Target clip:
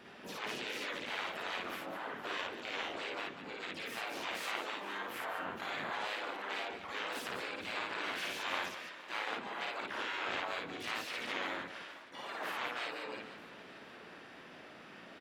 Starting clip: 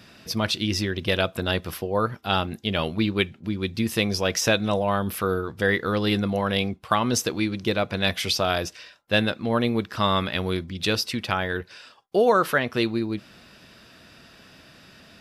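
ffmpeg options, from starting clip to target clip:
ffmpeg -i in.wav -filter_complex "[0:a]afftfilt=real='re*lt(hypot(re,im),0.0891)':imag='im*lt(hypot(re,im),0.0891)':win_size=1024:overlap=0.75,asplit=2[link_01][link_02];[link_02]aecho=0:1:465|930|1395|1860|2325:0.15|0.0808|0.0436|0.0236|0.0127[link_03];[link_01][link_03]amix=inputs=2:normalize=0,asplit=4[link_04][link_05][link_06][link_07];[link_05]asetrate=29433,aresample=44100,atempo=1.49831,volume=-6dB[link_08];[link_06]asetrate=52444,aresample=44100,atempo=0.840896,volume=-3dB[link_09];[link_07]asetrate=88200,aresample=44100,atempo=0.5,volume=-5dB[link_10];[link_04][link_08][link_09][link_10]amix=inputs=4:normalize=0,acrossover=split=200 3000:gain=0.141 1 0.126[link_11][link_12][link_13];[link_11][link_12][link_13]amix=inputs=3:normalize=0,asplit=2[link_14][link_15];[link_15]aecho=0:1:55.39|201.2:0.891|0.355[link_16];[link_14][link_16]amix=inputs=2:normalize=0,volume=-5.5dB" out.wav

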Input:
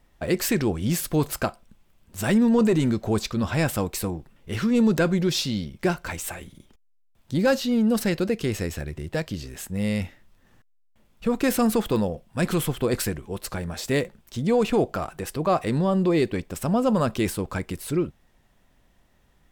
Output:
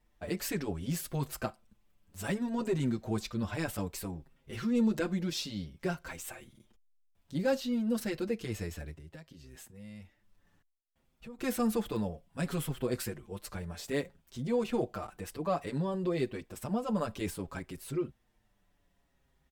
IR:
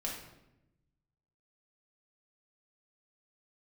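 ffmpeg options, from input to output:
-filter_complex "[0:a]asettb=1/sr,asplit=3[link_01][link_02][link_03];[link_01]atrim=end=8.914[link_04];[link_02]atrim=start=8.91:end=11.39,asetpts=PTS-STARTPTS,afade=type=in:duration=0.004:curve=qsin,afade=type=out:start_time=2.476:duration=0.004:curve=qsin,acompressor=threshold=-38dB:ratio=4[link_05];[link_03]atrim=start=11.386[link_06];[link_04][link_05]acrossfade=duration=0.004:curve1=hsin:curve2=qsin[link_07];[link_07][link_06]acrossfade=duration=0.004:curve1=qsin:curve2=hsin,asplit=2[link_08][link_09];[link_09]adelay=6.2,afreqshift=-0.6[link_10];[link_08][link_10]amix=inputs=2:normalize=1,volume=-7.5dB"

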